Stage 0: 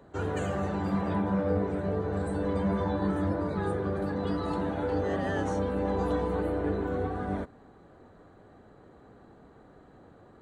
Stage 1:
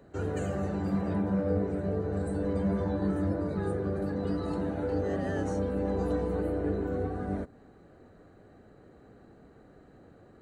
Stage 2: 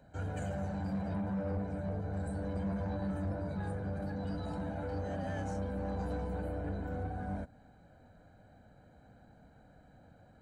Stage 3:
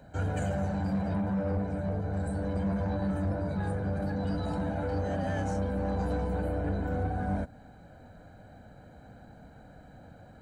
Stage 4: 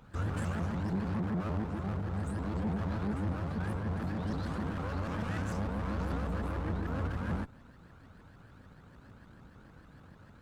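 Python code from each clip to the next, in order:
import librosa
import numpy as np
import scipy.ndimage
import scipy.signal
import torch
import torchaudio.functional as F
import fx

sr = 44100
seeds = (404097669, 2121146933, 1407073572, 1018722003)

y1 = fx.peak_eq(x, sr, hz=980.0, db=-7.5, octaves=0.71)
y1 = fx.notch(y1, sr, hz=3400.0, q=7.7)
y1 = fx.dynamic_eq(y1, sr, hz=2600.0, q=0.75, threshold_db=-54.0, ratio=4.0, max_db=-5)
y2 = y1 + 0.78 * np.pad(y1, (int(1.3 * sr / 1000.0), 0))[:len(y1)]
y2 = 10.0 ** (-24.5 / 20.0) * np.tanh(y2 / 10.0 ** (-24.5 / 20.0))
y2 = F.gain(torch.from_numpy(y2), -5.5).numpy()
y3 = fx.rider(y2, sr, range_db=10, speed_s=2.0)
y3 = F.gain(torch.from_numpy(y3), 6.0).numpy()
y4 = fx.lower_of_two(y3, sr, delay_ms=0.71)
y4 = fx.vibrato_shape(y4, sr, shape='saw_up', rate_hz=6.7, depth_cents=250.0)
y4 = F.gain(torch.from_numpy(y4), -2.5).numpy()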